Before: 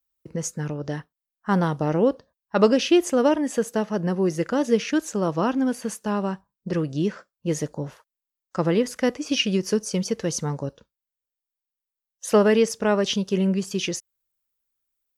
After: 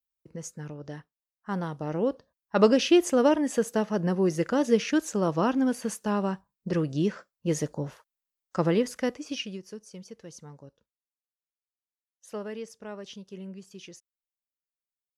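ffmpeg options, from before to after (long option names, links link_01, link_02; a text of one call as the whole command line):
ffmpeg -i in.wav -af "volume=-2dB,afade=type=in:start_time=1.79:duration=0.88:silence=0.398107,afade=type=out:start_time=8.63:duration=0.72:silence=0.375837,afade=type=out:start_time=9.35:duration=0.28:silence=0.375837" out.wav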